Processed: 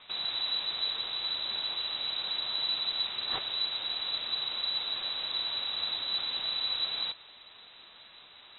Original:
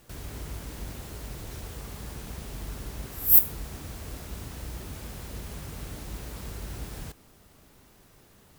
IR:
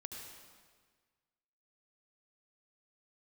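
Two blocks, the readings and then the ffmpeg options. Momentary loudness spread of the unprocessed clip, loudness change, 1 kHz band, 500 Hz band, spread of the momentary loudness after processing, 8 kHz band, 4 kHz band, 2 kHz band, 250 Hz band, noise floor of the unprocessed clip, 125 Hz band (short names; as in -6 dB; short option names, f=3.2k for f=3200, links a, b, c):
16 LU, -2.5 dB, +4.0 dB, -4.0 dB, 3 LU, under -40 dB, +21.5 dB, +6.0 dB, -13.0 dB, -58 dBFS, under -20 dB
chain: -af "aexciter=amount=1.3:drive=8.6:freq=2.9k,acrusher=bits=7:mix=0:aa=0.5,lowpass=f=3.4k:t=q:w=0.5098,lowpass=f=3.4k:t=q:w=0.6013,lowpass=f=3.4k:t=q:w=0.9,lowpass=f=3.4k:t=q:w=2.563,afreqshift=-4000,volume=5dB"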